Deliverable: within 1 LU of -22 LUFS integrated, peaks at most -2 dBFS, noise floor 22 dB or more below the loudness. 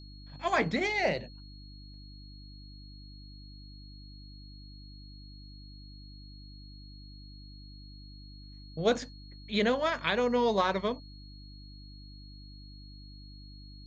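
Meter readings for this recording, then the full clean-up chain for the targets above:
hum 50 Hz; highest harmonic 300 Hz; hum level -46 dBFS; steady tone 4.3 kHz; tone level -54 dBFS; loudness -29.5 LUFS; peak level -13.5 dBFS; loudness target -22.0 LUFS
-> de-hum 50 Hz, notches 6; band-stop 4.3 kHz, Q 30; trim +7.5 dB

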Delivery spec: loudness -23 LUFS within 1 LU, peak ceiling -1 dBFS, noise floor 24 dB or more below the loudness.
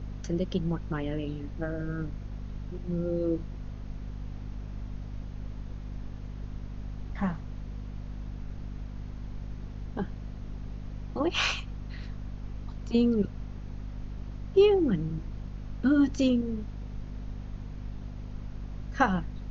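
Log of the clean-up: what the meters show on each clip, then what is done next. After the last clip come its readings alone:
hum 50 Hz; highest harmonic 250 Hz; hum level -36 dBFS; noise floor -41 dBFS; noise floor target -57 dBFS; loudness -32.5 LUFS; peak level -10.0 dBFS; loudness target -23.0 LUFS
-> de-hum 50 Hz, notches 5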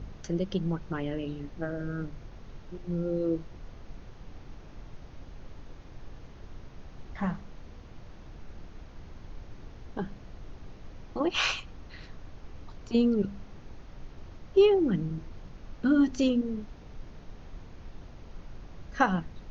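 hum not found; noise floor -48 dBFS; noise floor target -54 dBFS
-> noise print and reduce 6 dB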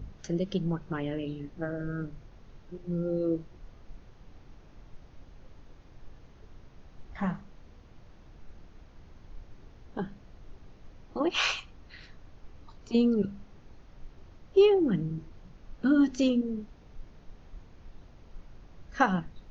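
noise floor -54 dBFS; loudness -29.5 LUFS; peak level -9.5 dBFS; loudness target -23.0 LUFS
-> trim +6.5 dB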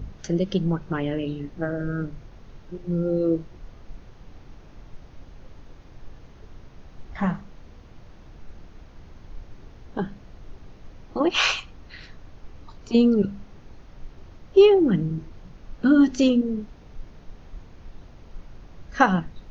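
loudness -23.0 LUFS; peak level -3.0 dBFS; noise floor -48 dBFS

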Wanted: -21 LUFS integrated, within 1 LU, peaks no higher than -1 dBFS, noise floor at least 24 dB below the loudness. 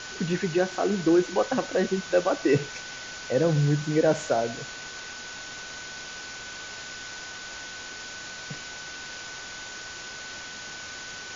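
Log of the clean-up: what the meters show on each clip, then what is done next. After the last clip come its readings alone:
steady tone 1.5 kHz; tone level -41 dBFS; noise floor -40 dBFS; noise floor target -53 dBFS; loudness -29.0 LUFS; peak level -9.0 dBFS; loudness target -21.0 LUFS
-> band-stop 1.5 kHz, Q 30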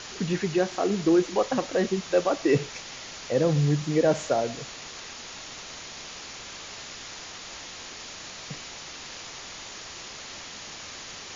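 steady tone not found; noise floor -41 dBFS; noise floor target -53 dBFS
-> noise reduction 12 dB, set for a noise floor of -41 dBFS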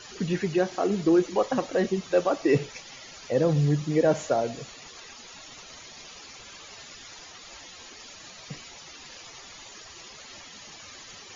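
noise floor -46 dBFS; noise floor target -50 dBFS
-> noise reduction 6 dB, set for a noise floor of -46 dBFS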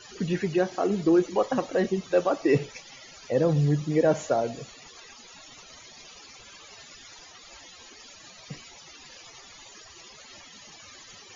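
noise floor -49 dBFS; noise floor target -50 dBFS
-> noise reduction 6 dB, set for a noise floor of -49 dBFS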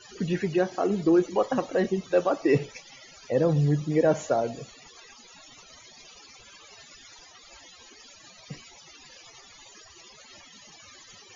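noise floor -52 dBFS; loudness -25.5 LUFS; peak level -9.5 dBFS; loudness target -21.0 LUFS
-> trim +4.5 dB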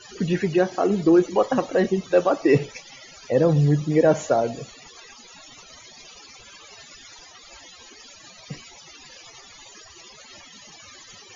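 loudness -21.0 LUFS; peak level -5.0 dBFS; noise floor -47 dBFS

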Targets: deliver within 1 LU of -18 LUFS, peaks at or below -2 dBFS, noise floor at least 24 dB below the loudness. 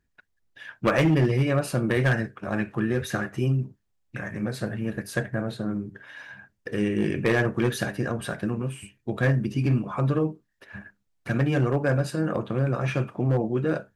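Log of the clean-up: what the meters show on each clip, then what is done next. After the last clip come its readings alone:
clipped samples 0.7%; clipping level -15.0 dBFS; loudness -26.0 LUFS; peak level -15.0 dBFS; loudness target -18.0 LUFS
-> clip repair -15 dBFS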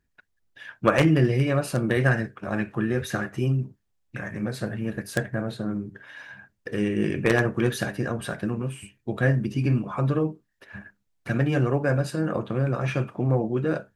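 clipped samples 0.0%; loudness -25.5 LUFS; peak level -6.0 dBFS; loudness target -18.0 LUFS
-> trim +7.5 dB; peak limiter -2 dBFS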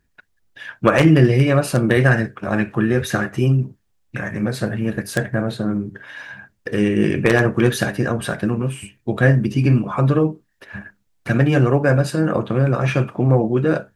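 loudness -18.5 LUFS; peak level -2.0 dBFS; noise floor -66 dBFS

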